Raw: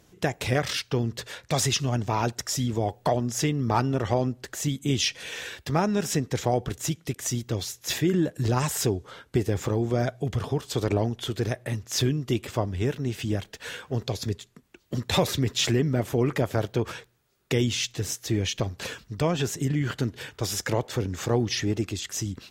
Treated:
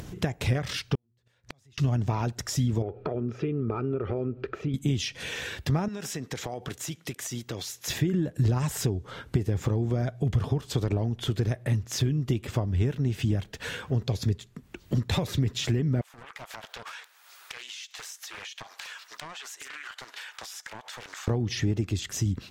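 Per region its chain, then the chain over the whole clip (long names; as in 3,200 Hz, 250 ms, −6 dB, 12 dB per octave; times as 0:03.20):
0:00.95–0:01.78: hum removal 119.6 Hz, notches 3 + downward compressor 5 to 1, threshold −37 dBFS + gate with flip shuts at −34 dBFS, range −38 dB
0:02.82–0:04.74: downward compressor 3 to 1, threshold −37 dBFS + high-frequency loss of the air 310 metres + hollow resonant body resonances 410/1,300/2,400 Hz, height 17 dB, ringing for 25 ms
0:05.88–0:07.88: high-pass filter 650 Hz 6 dB per octave + downward compressor, threshold −32 dBFS
0:16.01–0:21.28: high-pass filter 850 Hz 24 dB per octave + downward compressor 8 to 1, threshold −47 dBFS + highs frequency-modulated by the lows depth 0.59 ms
whole clip: downward compressor, threshold −27 dBFS; bass and treble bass +8 dB, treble −3 dB; upward compression, threshold −30 dBFS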